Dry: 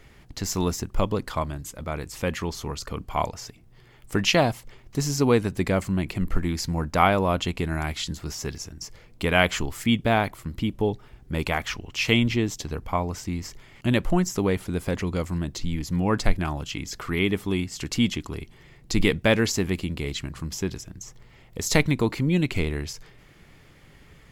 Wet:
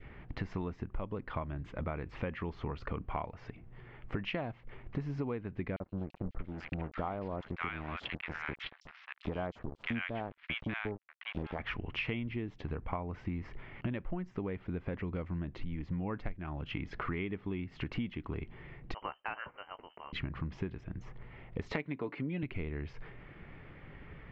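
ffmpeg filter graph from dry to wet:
-filter_complex "[0:a]asettb=1/sr,asplit=3[s0][s1][s2];[s0]atrim=end=5.764[s3];[s1]atrim=start=5.76:end=11.59,asetpts=PTS-STARTPTS,afade=t=in:d=0.004:c=qsin,afade=t=out:st=5.826:d=0.004:c=qsin,highshelf=f=2400:g=7,aeval=exprs='sgn(val(0))*max(abs(val(0))-0.0355,0)':c=same,acrossover=split=1200|4300[s4][s5][s6];[s4]adelay=40[s7];[s5]adelay=630[s8];[s7][s8][s6]amix=inputs=3:normalize=0,atrim=end_sample=257103[s9];[s2]atrim=start=11.586[s10];[s3][s9]acrossfade=d=0.004:c1=hsin:c2=qsin[s11];[s11][s10]acrossfade=d=0.004:c1=qsin:c2=hsin,asettb=1/sr,asplit=3[s12][s13][s14];[s12]atrim=end=18.944[s15];[s13]atrim=start=18.94:end=20.13,asetpts=PTS-STARTPTS,afade=t=in:d=0.004:c=qsin,afade=t=out:st=1.186:d=0.004:c=qsin,aderivative,lowpass=f=2700:t=q:w=0.5098,lowpass=f=2700:t=q:w=0.6013,lowpass=f=2700:t=q:w=0.9,lowpass=f=2700:t=q:w=2.563,afreqshift=-3200,asplit=2[s16][s17];[s17]adelay=17,volume=0.224[s18];[s16][s18]amix=inputs=2:normalize=0,atrim=end_sample=52479[s19];[s14]atrim=start=20.126[s20];[s15][s19]acrossfade=d=0.004:c1=hsin:c2=qsin[s21];[s21][s20]acrossfade=d=0.004:c1=qsin:c2=hsin,asettb=1/sr,asplit=3[s22][s23][s24];[s22]atrim=end=21.724[s25];[s23]atrim=start=21.72:end=22.43,asetpts=PTS-STARTPTS,afade=t=in:d=0.004:c=qsin,afade=t=out:st=0.706:d=0.004:c=qsin,highpass=210,aecho=1:1:7:0.45,atrim=end_sample=31311[s26];[s24]atrim=start=22.426[s27];[s25][s26]acrossfade=d=0.004:c1=hsin:c2=qsin[s28];[s28][s27]acrossfade=d=0.004:c1=qsin:c2=hsin,lowpass=f=2500:w=0.5412,lowpass=f=2500:w=1.3066,adynamicequalizer=threshold=0.0141:dfrequency=910:dqfactor=0.97:tfrequency=910:tqfactor=0.97:attack=5:release=100:ratio=0.375:range=2:mode=cutabove:tftype=bell,acompressor=threshold=0.0178:ratio=10,volume=1.19"

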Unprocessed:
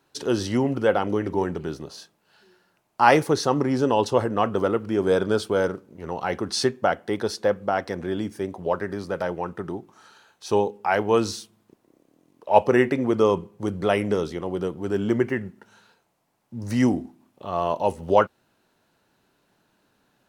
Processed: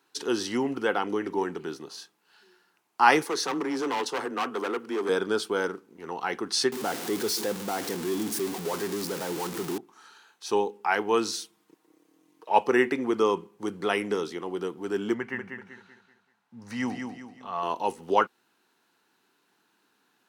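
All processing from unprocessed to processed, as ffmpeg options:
-filter_complex "[0:a]asettb=1/sr,asplit=3[s0][s1][s2];[s0]atrim=end=3.254[s3];[s1]atrim=start=3.25:end=5.09,asetpts=PTS-STARTPTS,afade=t=in:d=0.004:c=qsin,afade=t=out:st=1.836:d=0.004:c=qsin,highpass=190,afreqshift=19,asoftclip=type=hard:threshold=0.0891[s4];[s2]atrim=start=5.086[s5];[s3][s4]acrossfade=d=0.004:c1=hsin:c2=qsin[s6];[s6][s5]acrossfade=d=0.004:c1=qsin:c2=hsin,asettb=1/sr,asplit=3[s7][s8][s9];[s7]atrim=end=6.724[s10];[s8]atrim=start=6.72:end=9.78,asetpts=PTS-STARTPTS,afade=t=in:d=0.004:c=qsin,afade=t=out:st=3.056:d=0.004:c=qsin,aeval=exprs='val(0)+0.5*0.0794*sgn(val(0))':c=same,equalizer=f=1600:w=0.46:g=-9.5[s11];[s9]atrim=start=9.776[s12];[s10][s11]acrossfade=d=0.004:c1=hsin:c2=qsin[s13];[s13][s12]acrossfade=d=0.004:c1=qsin:c2=hsin,asettb=1/sr,asplit=3[s14][s15][s16];[s14]atrim=end=11.324[s17];[s15]atrim=start=11.32:end=12.49,asetpts=PTS-STARTPTS,afade=t=in:d=0.004:c=qsin,afade=t=out:st=1.166:d=0.004:c=qsin,equalizer=f=81:t=o:w=1.9:g=-4,aecho=1:1:6.4:0.8,atrim=end_sample=51597[s18];[s16]atrim=start=12.486[s19];[s17][s18]acrossfade=d=0.004:c1=hsin:c2=qsin[s20];[s20][s19]acrossfade=d=0.004:c1=qsin:c2=hsin,asettb=1/sr,asplit=3[s21][s22][s23];[s21]atrim=end=15.144[s24];[s22]atrim=start=15.14:end=17.63,asetpts=PTS-STARTPTS,afade=t=in:d=0.004:c=qsin,afade=t=out:st=2.486:d=0.004:c=qsin,lowpass=f=2600:p=1,equalizer=f=340:w=2.5:g=-14.5,aecho=1:1:192|384|576|768|960:0.501|0.195|0.0762|0.0297|0.0116,atrim=end_sample=109809[s25];[s23]atrim=start=17.626[s26];[s24][s25]acrossfade=d=0.004:c1=hsin:c2=qsin[s27];[s27][s26]acrossfade=d=0.004:c1=qsin:c2=hsin,highpass=310,equalizer=f=590:w=3.6:g=-14.5"

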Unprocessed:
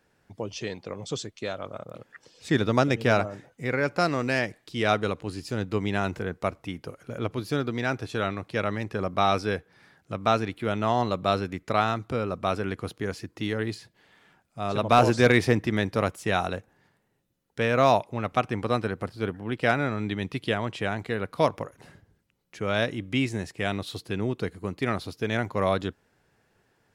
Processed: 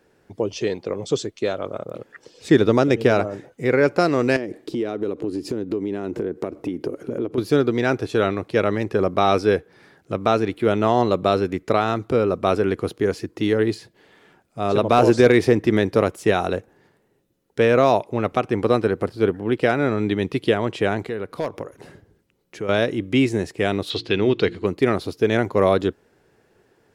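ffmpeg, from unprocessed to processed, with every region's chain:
-filter_complex "[0:a]asettb=1/sr,asplit=3[s0][s1][s2];[s0]atrim=end=4.364[s3];[s1]atrim=start=4.36:end=7.38,asetpts=PTS-STARTPTS,afade=t=in:d=0.004:c=qsin,afade=t=out:st=3.016:d=0.004:c=qsin,equalizer=f=310:t=o:w=1.6:g=13.5,acompressor=threshold=0.0282:ratio=10:attack=3.2:release=140:knee=1:detection=peak[s4];[s2]atrim=start=7.376[s5];[s3][s4]acrossfade=d=0.004:c1=hsin:c2=qsin[s6];[s6][s5]acrossfade=d=0.004:c1=qsin:c2=hsin,asettb=1/sr,asplit=3[s7][s8][s9];[s7]atrim=end=21.084[s10];[s8]atrim=start=21.08:end=22.69,asetpts=PTS-STARTPTS,afade=t=in:d=0.004:c=qsin,afade=t=out:st=1.606:d=0.004:c=qsin,aeval=exprs='0.237*(abs(mod(val(0)/0.237+3,4)-2)-1)':c=same,acompressor=threshold=0.0126:ratio=2:attack=3.2:release=140:knee=1:detection=peak[s11];[s9]atrim=start=22.686[s12];[s10][s11]acrossfade=d=0.004:c1=hsin:c2=qsin[s13];[s13][s12]acrossfade=d=0.004:c1=qsin:c2=hsin,asettb=1/sr,asplit=3[s14][s15][s16];[s14]atrim=end=23.904[s17];[s15]atrim=start=23.9:end=24.67,asetpts=PTS-STARTPTS,afade=t=in:d=0.004:c=qsin,afade=t=out:st=0.766:d=0.004:c=qsin,lowpass=4600,equalizer=f=3400:w=0.69:g=13,bandreject=f=57.5:t=h:w=4,bandreject=f=115:t=h:w=4,bandreject=f=172.5:t=h:w=4,bandreject=f=230:t=h:w=4,bandreject=f=287.5:t=h:w=4,bandreject=f=345:t=h:w=4[s18];[s16]atrim=start=24.666[s19];[s17][s18]acrossfade=d=0.004:c1=hsin:c2=qsin[s20];[s20][s19]acrossfade=d=0.004:c1=qsin:c2=hsin,alimiter=limit=0.251:level=0:latency=1:release=215,equalizer=f=390:t=o:w=1.1:g=9,volume=1.58"

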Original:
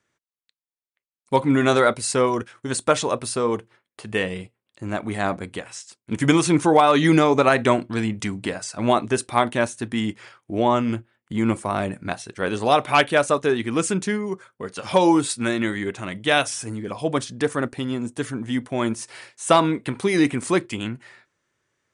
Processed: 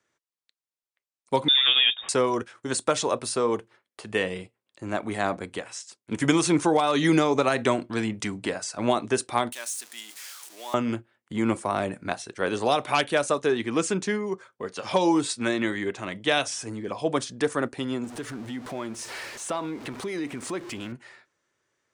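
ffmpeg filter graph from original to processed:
-filter_complex "[0:a]asettb=1/sr,asplit=3[s0][s1][s2];[s0]atrim=end=1.484[s3];[s1]atrim=start=1.48:end=2.09,asetpts=PTS-STARTPTS,afade=t=in:d=0.004:c=qsin,afade=t=out:st=0.606:d=0.004:c=qsin,bandreject=f=1500:w=6.6,adynamicsmooth=sensitivity=5:basefreq=2200,lowpass=f=3200:t=q:w=0.5098,lowpass=f=3200:t=q:w=0.6013,lowpass=f=3200:t=q:w=0.9,lowpass=f=3200:t=q:w=2.563,afreqshift=-3800[s4];[s2]atrim=start=2.086[s5];[s3][s4]acrossfade=d=0.004:c1=hsin:c2=qsin[s6];[s6][s5]acrossfade=d=0.004:c1=qsin:c2=hsin,asettb=1/sr,asplit=3[s7][s8][s9];[s7]atrim=end=9.524[s10];[s8]atrim=start=9.52:end=10.74,asetpts=PTS-STARTPTS,afade=t=in:d=0.004:c=qsin,afade=t=out:st=1.216:d=0.004:c=qsin,aeval=exprs='val(0)+0.5*0.0355*sgn(val(0))':c=same,highpass=190,aderivative[s11];[s9]atrim=start=10.736[s12];[s10][s11]acrossfade=d=0.004:c1=hsin:c2=qsin[s13];[s13][s12]acrossfade=d=0.004:c1=qsin:c2=hsin,asettb=1/sr,asplit=3[s14][s15][s16];[s14]atrim=end=13.484[s17];[s15]atrim=start=13.48:end=17.07,asetpts=PTS-STARTPTS,afade=t=in:d=0.004:c=qsin,afade=t=out:st=3.586:d=0.004:c=qsin,lowpass=8100,bandreject=f=1400:w=24[s18];[s16]atrim=start=17.066[s19];[s17][s18]acrossfade=d=0.004:c1=hsin:c2=qsin[s20];[s20][s19]acrossfade=d=0.004:c1=qsin:c2=hsin,asettb=1/sr,asplit=3[s21][s22][s23];[s21]atrim=end=18.044[s24];[s22]atrim=start=18.04:end=20.92,asetpts=PTS-STARTPTS,afade=t=in:d=0.004:c=qsin,afade=t=out:st=2.876:d=0.004:c=qsin,aeval=exprs='val(0)+0.5*0.0266*sgn(val(0))':c=same,highshelf=f=5400:g=-6.5,acompressor=threshold=0.0282:ratio=2.5:attack=3.2:release=140:knee=1:detection=peak[s25];[s23]atrim=start=20.916[s26];[s24][s25]acrossfade=d=0.004:c1=hsin:c2=qsin[s27];[s27][s26]acrossfade=d=0.004:c1=qsin:c2=hsin,bass=f=250:g=-7,treble=f=4000:g=11,acrossover=split=260|3000[s28][s29][s30];[s29]acompressor=threshold=0.112:ratio=6[s31];[s28][s31][s30]amix=inputs=3:normalize=0,aemphasis=mode=reproduction:type=75kf"

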